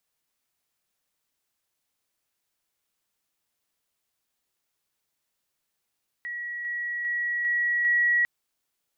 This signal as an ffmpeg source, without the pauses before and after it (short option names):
-f lavfi -i "aevalsrc='pow(10,(-31+3*floor(t/0.4))/20)*sin(2*PI*1920*t)':d=2:s=44100"